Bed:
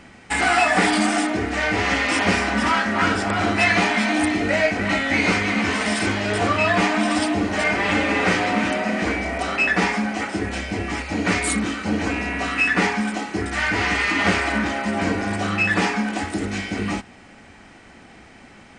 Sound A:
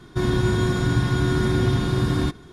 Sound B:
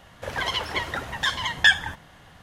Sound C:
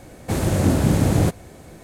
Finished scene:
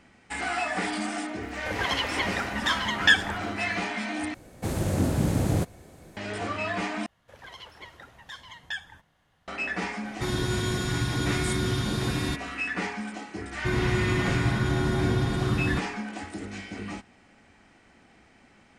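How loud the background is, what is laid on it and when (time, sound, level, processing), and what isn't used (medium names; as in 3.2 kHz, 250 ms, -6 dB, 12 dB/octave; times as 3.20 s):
bed -11.5 dB
1.43 s: add B -2 dB + crackle 140 per s -44 dBFS
4.34 s: replace with C -7 dB
7.06 s: replace with B -18 dB
10.05 s: add A -8 dB + treble shelf 2.2 kHz +11 dB
13.49 s: add A -5 dB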